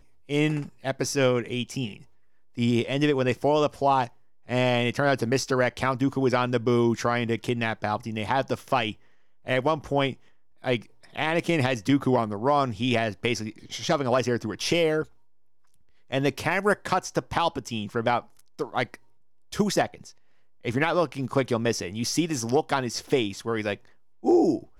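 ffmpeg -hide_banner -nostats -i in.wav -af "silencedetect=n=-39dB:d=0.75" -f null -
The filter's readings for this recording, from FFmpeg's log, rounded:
silence_start: 15.04
silence_end: 16.11 | silence_duration: 1.06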